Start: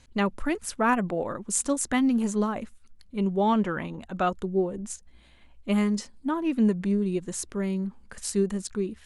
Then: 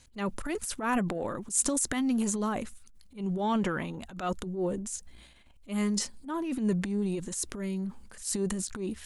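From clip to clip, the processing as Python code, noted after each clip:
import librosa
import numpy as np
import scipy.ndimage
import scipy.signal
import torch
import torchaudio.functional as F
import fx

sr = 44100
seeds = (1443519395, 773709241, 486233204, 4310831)

y = fx.high_shelf(x, sr, hz=4800.0, db=11.0)
y = fx.transient(y, sr, attack_db=-11, sustain_db=8)
y = y * 10.0 ** (-4.5 / 20.0)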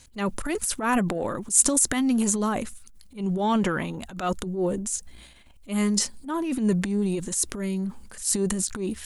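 y = fx.high_shelf(x, sr, hz=8000.0, db=6.5)
y = y * 10.0 ** (5.0 / 20.0)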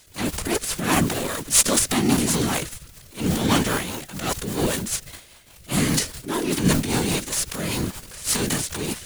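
y = fx.envelope_flatten(x, sr, power=0.3)
y = fx.rotary(y, sr, hz=5.0)
y = fx.whisperise(y, sr, seeds[0])
y = y * 10.0 ** (4.5 / 20.0)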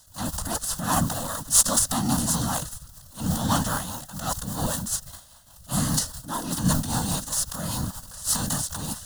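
y = fx.fixed_phaser(x, sr, hz=950.0, stages=4)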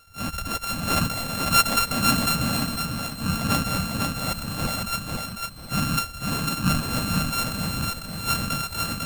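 y = np.r_[np.sort(x[:len(x) // 32 * 32].reshape(-1, 32), axis=1).ravel(), x[len(x) // 32 * 32:]]
y = fx.echo_feedback(y, sr, ms=499, feedback_pct=27, wet_db=-3.5)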